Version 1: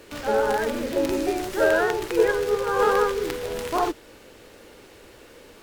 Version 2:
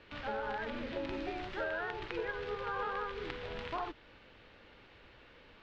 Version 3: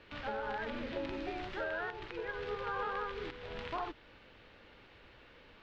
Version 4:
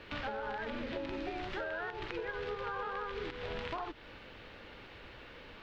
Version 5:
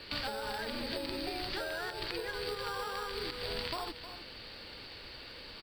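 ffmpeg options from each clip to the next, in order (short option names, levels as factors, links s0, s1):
-af "lowpass=f=3700:w=0.5412,lowpass=f=3700:w=1.3066,equalizer=f=400:w=0.9:g=-9.5,acompressor=threshold=0.0398:ratio=6,volume=0.501"
-af "alimiter=level_in=1.33:limit=0.0631:level=0:latency=1:release=323,volume=0.75"
-af "acompressor=threshold=0.00708:ratio=6,volume=2.24"
-filter_complex "[0:a]lowpass=f=4600:t=q:w=15,aecho=1:1:310:0.251,acrossover=split=1100[s0][s1];[s0]acrusher=samples=10:mix=1:aa=0.000001[s2];[s2][s1]amix=inputs=2:normalize=0"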